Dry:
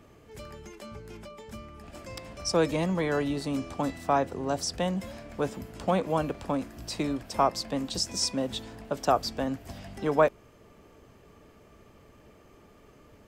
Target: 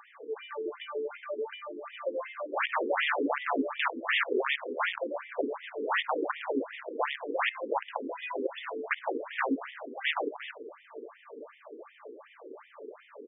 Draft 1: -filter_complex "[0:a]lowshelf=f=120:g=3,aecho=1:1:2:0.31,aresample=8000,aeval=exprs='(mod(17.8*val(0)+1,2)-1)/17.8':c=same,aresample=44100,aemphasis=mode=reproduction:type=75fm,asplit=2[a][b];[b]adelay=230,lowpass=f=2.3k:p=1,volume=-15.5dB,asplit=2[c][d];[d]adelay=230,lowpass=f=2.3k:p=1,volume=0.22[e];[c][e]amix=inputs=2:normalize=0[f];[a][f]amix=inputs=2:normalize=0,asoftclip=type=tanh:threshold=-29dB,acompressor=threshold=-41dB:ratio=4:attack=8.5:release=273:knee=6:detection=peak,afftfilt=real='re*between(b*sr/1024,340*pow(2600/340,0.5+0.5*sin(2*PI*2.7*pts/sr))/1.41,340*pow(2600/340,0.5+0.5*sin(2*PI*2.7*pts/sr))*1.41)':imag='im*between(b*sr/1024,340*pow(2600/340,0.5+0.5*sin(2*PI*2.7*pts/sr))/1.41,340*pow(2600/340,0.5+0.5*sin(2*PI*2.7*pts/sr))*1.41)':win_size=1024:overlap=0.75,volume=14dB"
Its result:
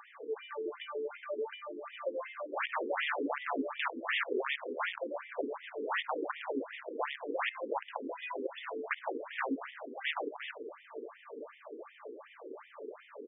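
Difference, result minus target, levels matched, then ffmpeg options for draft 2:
compressor: peak gain reduction +5.5 dB
-filter_complex "[0:a]lowshelf=f=120:g=3,aecho=1:1:2:0.31,aresample=8000,aeval=exprs='(mod(17.8*val(0)+1,2)-1)/17.8':c=same,aresample=44100,aemphasis=mode=reproduction:type=75fm,asplit=2[a][b];[b]adelay=230,lowpass=f=2.3k:p=1,volume=-15.5dB,asplit=2[c][d];[d]adelay=230,lowpass=f=2.3k:p=1,volume=0.22[e];[c][e]amix=inputs=2:normalize=0[f];[a][f]amix=inputs=2:normalize=0,asoftclip=type=tanh:threshold=-29dB,acompressor=threshold=-33dB:ratio=4:attack=8.5:release=273:knee=6:detection=peak,afftfilt=real='re*between(b*sr/1024,340*pow(2600/340,0.5+0.5*sin(2*PI*2.7*pts/sr))/1.41,340*pow(2600/340,0.5+0.5*sin(2*PI*2.7*pts/sr))*1.41)':imag='im*between(b*sr/1024,340*pow(2600/340,0.5+0.5*sin(2*PI*2.7*pts/sr))/1.41,340*pow(2600/340,0.5+0.5*sin(2*PI*2.7*pts/sr))*1.41)':win_size=1024:overlap=0.75,volume=14dB"

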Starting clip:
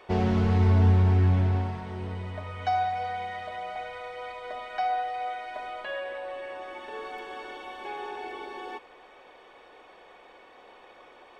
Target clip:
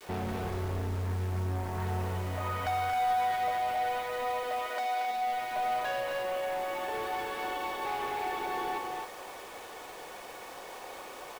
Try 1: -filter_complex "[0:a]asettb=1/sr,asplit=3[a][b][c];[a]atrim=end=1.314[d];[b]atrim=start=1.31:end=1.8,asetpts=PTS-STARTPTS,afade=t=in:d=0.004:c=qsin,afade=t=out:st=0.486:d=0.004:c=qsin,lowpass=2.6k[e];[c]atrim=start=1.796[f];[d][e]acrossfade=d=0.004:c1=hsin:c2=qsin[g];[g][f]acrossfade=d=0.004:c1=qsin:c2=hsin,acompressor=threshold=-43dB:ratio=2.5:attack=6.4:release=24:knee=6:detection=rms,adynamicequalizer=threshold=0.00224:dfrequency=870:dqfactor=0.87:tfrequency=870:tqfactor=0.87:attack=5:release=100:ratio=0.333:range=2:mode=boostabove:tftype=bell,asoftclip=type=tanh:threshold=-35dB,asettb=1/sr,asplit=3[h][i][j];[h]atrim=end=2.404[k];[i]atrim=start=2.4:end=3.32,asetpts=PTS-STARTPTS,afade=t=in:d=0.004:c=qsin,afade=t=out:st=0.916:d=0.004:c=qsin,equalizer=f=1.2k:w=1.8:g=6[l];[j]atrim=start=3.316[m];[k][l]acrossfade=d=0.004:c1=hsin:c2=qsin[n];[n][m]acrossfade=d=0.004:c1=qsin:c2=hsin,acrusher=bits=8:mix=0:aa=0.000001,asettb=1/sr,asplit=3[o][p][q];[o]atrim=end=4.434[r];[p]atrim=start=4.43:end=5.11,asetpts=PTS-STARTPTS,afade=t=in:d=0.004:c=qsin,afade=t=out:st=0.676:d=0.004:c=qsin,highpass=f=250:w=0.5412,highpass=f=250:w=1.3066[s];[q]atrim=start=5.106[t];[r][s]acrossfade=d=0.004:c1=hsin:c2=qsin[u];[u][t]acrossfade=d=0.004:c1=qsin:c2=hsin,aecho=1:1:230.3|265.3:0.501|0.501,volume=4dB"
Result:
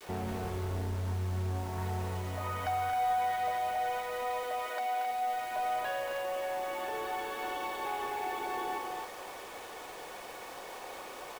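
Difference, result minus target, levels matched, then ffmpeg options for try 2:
compressor: peak gain reduction +5 dB
-filter_complex "[0:a]asettb=1/sr,asplit=3[a][b][c];[a]atrim=end=1.314[d];[b]atrim=start=1.31:end=1.8,asetpts=PTS-STARTPTS,afade=t=in:d=0.004:c=qsin,afade=t=out:st=0.486:d=0.004:c=qsin,lowpass=2.6k[e];[c]atrim=start=1.796[f];[d][e]acrossfade=d=0.004:c1=hsin:c2=qsin[g];[g][f]acrossfade=d=0.004:c1=qsin:c2=hsin,acompressor=threshold=-35dB:ratio=2.5:attack=6.4:release=24:knee=6:detection=rms,adynamicequalizer=threshold=0.00224:dfrequency=870:dqfactor=0.87:tfrequency=870:tqfactor=0.87:attack=5:release=100:ratio=0.333:range=2:mode=boostabove:tftype=bell,asoftclip=type=tanh:threshold=-35dB,asettb=1/sr,asplit=3[h][i][j];[h]atrim=end=2.404[k];[i]atrim=start=2.4:end=3.32,asetpts=PTS-STARTPTS,afade=t=in:d=0.004:c=qsin,afade=t=out:st=0.916:d=0.004:c=qsin,equalizer=f=1.2k:w=1.8:g=6[l];[j]atrim=start=3.316[m];[k][l]acrossfade=d=0.004:c1=hsin:c2=qsin[n];[n][m]acrossfade=d=0.004:c1=qsin:c2=hsin,acrusher=bits=8:mix=0:aa=0.000001,asettb=1/sr,asplit=3[o][p][q];[o]atrim=end=4.434[r];[p]atrim=start=4.43:end=5.11,asetpts=PTS-STARTPTS,afade=t=in:d=0.004:c=qsin,afade=t=out:st=0.676:d=0.004:c=qsin,highpass=f=250:w=0.5412,highpass=f=250:w=1.3066[s];[q]atrim=start=5.106[t];[r][s]acrossfade=d=0.004:c1=hsin:c2=qsin[u];[u][t]acrossfade=d=0.004:c1=qsin:c2=hsin,aecho=1:1:230.3|265.3:0.501|0.501,volume=4dB"

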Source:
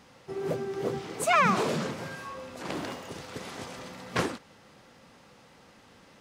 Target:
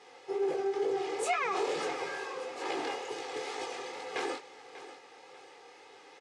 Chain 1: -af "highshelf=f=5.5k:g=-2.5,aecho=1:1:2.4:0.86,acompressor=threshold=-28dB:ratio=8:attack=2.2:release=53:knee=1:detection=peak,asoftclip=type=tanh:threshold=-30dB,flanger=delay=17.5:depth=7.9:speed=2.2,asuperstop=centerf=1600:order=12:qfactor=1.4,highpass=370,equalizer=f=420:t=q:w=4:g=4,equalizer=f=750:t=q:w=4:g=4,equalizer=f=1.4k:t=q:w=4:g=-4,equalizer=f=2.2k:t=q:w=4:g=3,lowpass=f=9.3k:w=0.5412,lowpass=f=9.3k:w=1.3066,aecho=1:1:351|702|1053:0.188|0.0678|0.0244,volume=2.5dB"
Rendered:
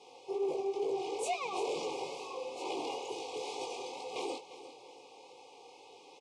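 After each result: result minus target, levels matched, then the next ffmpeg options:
soft clip: distortion +15 dB; echo 0.241 s early; 2000 Hz band -5.5 dB
-af "highshelf=f=5.5k:g=-2.5,aecho=1:1:2.4:0.86,acompressor=threshold=-28dB:ratio=8:attack=2.2:release=53:knee=1:detection=peak,asoftclip=type=tanh:threshold=-20dB,flanger=delay=17.5:depth=7.9:speed=2.2,asuperstop=centerf=1600:order=12:qfactor=1.4,highpass=370,equalizer=f=420:t=q:w=4:g=4,equalizer=f=750:t=q:w=4:g=4,equalizer=f=1.4k:t=q:w=4:g=-4,equalizer=f=2.2k:t=q:w=4:g=3,lowpass=f=9.3k:w=0.5412,lowpass=f=9.3k:w=1.3066,aecho=1:1:351|702|1053:0.188|0.0678|0.0244,volume=2.5dB"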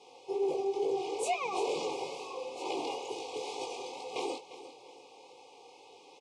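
echo 0.241 s early; 2000 Hz band -5.5 dB
-af "highshelf=f=5.5k:g=-2.5,aecho=1:1:2.4:0.86,acompressor=threshold=-28dB:ratio=8:attack=2.2:release=53:knee=1:detection=peak,asoftclip=type=tanh:threshold=-20dB,flanger=delay=17.5:depth=7.9:speed=2.2,asuperstop=centerf=1600:order=12:qfactor=1.4,highpass=370,equalizer=f=420:t=q:w=4:g=4,equalizer=f=750:t=q:w=4:g=4,equalizer=f=1.4k:t=q:w=4:g=-4,equalizer=f=2.2k:t=q:w=4:g=3,lowpass=f=9.3k:w=0.5412,lowpass=f=9.3k:w=1.3066,aecho=1:1:592|1184|1776:0.188|0.0678|0.0244,volume=2.5dB"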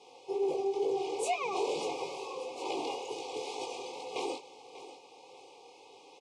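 2000 Hz band -6.0 dB
-af "highshelf=f=5.5k:g=-2.5,aecho=1:1:2.4:0.86,acompressor=threshold=-28dB:ratio=8:attack=2.2:release=53:knee=1:detection=peak,asoftclip=type=tanh:threshold=-20dB,flanger=delay=17.5:depth=7.9:speed=2.2,highpass=370,equalizer=f=420:t=q:w=4:g=4,equalizer=f=750:t=q:w=4:g=4,equalizer=f=1.4k:t=q:w=4:g=-4,equalizer=f=2.2k:t=q:w=4:g=3,lowpass=f=9.3k:w=0.5412,lowpass=f=9.3k:w=1.3066,aecho=1:1:592|1184|1776:0.188|0.0678|0.0244,volume=2.5dB"

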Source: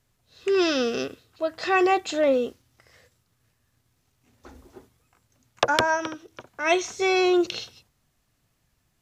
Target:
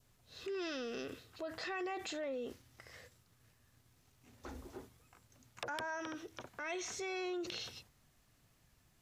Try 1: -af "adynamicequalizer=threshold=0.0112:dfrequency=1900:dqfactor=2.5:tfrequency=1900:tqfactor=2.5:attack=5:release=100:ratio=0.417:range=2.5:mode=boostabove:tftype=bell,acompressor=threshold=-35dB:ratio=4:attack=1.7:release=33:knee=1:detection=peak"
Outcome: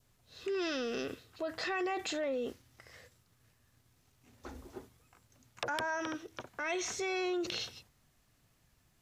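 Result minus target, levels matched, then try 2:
compressor: peak gain reduction -5.5 dB
-af "adynamicequalizer=threshold=0.0112:dfrequency=1900:dqfactor=2.5:tfrequency=1900:tqfactor=2.5:attack=5:release=100:ratio=0.417:range=2.5:mode=boostabove:tftype=bell,acompressor=threshold=-42.5dB:ratio=4:attack=1.7:release=33:knee=1:detection=peak"

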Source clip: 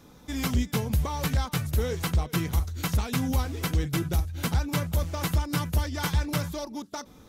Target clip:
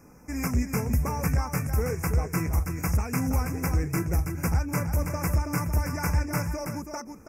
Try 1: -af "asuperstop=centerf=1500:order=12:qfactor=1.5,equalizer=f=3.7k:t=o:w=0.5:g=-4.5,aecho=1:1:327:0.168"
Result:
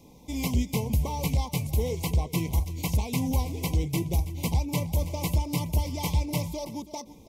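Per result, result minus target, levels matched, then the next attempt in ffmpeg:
4000 Hz band +7.0 dB; echo-to-direct -9 dB
-af "asuperstop=centerf=3600:order=12:qfactor=1.5,equalizer=f=3.7k:t=o:w=0.5:g=-4.5,aecho=1:1:327:0.168"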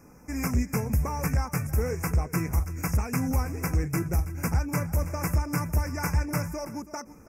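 echo-to-direct -9 dB
-af "asuperstop=centerf=3600:order=12:qfactor=1.5,equalizer=f=3.7k:t=o:w=0.5:g=-4.5,aecho=1:1:327:0.473"

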